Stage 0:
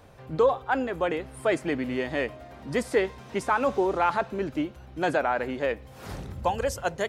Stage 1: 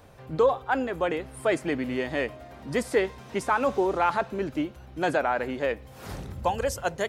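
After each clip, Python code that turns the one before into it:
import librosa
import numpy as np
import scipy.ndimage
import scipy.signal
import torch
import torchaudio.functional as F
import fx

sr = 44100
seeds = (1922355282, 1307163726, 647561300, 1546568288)

y = fx.high_shelf(x, sr, hz=9200.0, db=4.0)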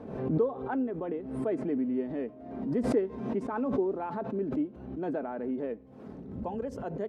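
y = fx.bandpass_q(x, sr, hz=280.0, q=1.8)
y = y + 0.33 * np.pad(y, (int(4.6 * sr / 1000.0), 0))[:len(y)]
y = fx.pre_swell(y, sr, db_per_s=57.0)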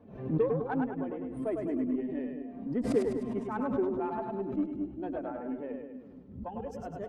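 y = fx.bin_expand(x, sr, power=1.5)
y = fx.echo_split(y, sr, split_hz=320.0, low_ms=218, high_ms=102, feedback_pct=52, wet_db=-4.0)
y = fx.cheby_harmonics(y, sr, harmonics=(8,), levels_db=(-32,), full_scale_db=-16.0)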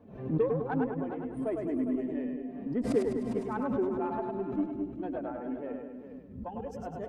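y = x + 10.0 ** (-10.5 / 20.0) * np.pad(x, (int(405 * sr / 1000.0), 0))[:len(x)]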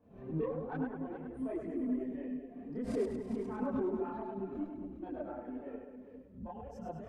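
y = fx.chorus_voices(x, sr, voices=6, hz=1.1, base_ms=29, depth_ms=3.0, mix_pct=60)
y = y * librosa.db_to_amplitude(-4.0)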